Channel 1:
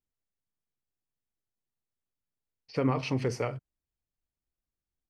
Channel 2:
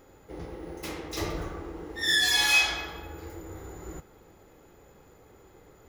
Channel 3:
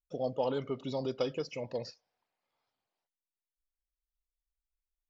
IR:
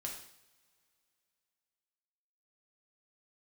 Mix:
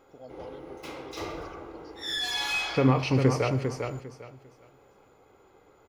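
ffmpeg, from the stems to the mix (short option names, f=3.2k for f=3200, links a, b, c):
-filter_complex "[0:a]volume=1.5dB,asplit=3[a][b][c];[b]volume=-5dB[d];[c]volume=-3dB[e];[1:a]bandreject=f=1.8k:w=5.4,asplit=2[f][g];[g]highpass=f=720:p=1,volume=12dB,asoftclip=type=tanh:threshold=-11dB[h];[f][h]amix=inputs=2:normalize=0,lowpass=f=2k:p=1,volume=-6dB,volume=-8.5dB,asplit=2[i][j];[j]volume=-4dB[k];[2:a]volume=-13.5dB[l];[3:a]atrim=start_sample=2205[m];[d][k]amix=inputs=2:normalize=0[n];[n][m]afir=irnorm=-1:irlink=0[o];[e]aecho=0:1:400|800|1200|1600:1|0.24|0.0576|0.0138[p];[a][i][l][o][p]amix=inputs=5:normalize=0"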